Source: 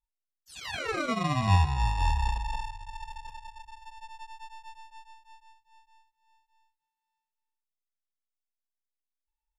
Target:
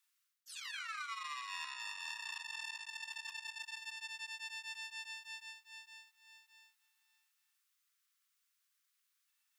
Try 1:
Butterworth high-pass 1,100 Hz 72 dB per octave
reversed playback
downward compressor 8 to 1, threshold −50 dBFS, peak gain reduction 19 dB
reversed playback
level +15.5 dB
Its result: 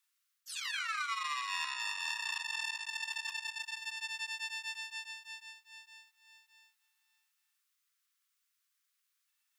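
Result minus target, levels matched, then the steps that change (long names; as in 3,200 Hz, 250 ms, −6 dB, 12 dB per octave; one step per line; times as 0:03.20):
downward compressor: peak gain reduction −7 dB
change: downward compressor 8 to 1, threshold −58 dBFS, peak gain reduction 26 dB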